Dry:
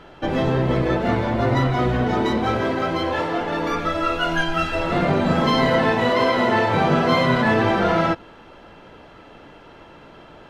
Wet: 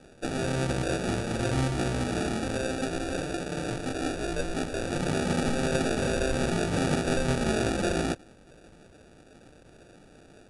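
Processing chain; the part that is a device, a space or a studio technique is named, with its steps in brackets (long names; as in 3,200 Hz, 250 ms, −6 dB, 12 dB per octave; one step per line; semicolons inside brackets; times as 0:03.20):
crushed at another speed (tape speed factor 2×; decimation without filtering 21×; tape speed factor 0.5×)
level −8.5 dB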